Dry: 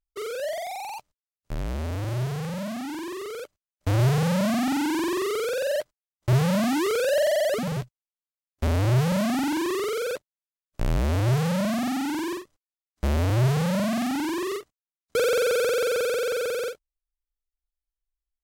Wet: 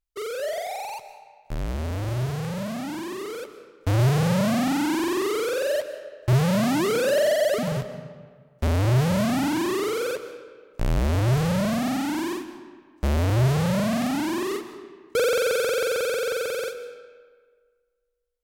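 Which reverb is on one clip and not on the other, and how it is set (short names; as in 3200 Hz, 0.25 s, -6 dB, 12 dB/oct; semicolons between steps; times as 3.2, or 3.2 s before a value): digital reverb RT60 1.7 s, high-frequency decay 0.7×, pre-delay 95 ms, DRR 11 dB; gain +1 dB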